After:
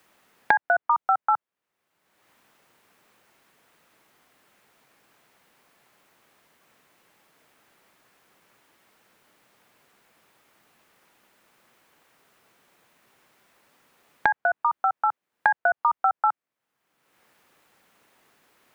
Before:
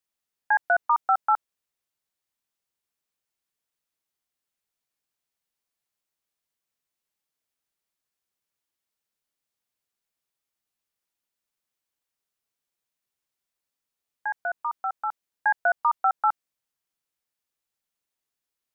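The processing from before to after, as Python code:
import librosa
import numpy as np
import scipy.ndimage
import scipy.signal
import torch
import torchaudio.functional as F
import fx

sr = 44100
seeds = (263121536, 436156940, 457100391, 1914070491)

y = fx.band_squash(x, sr, depth_pct=100)
y = F.gain(torch.from_numpy(y), 1.5).numpy()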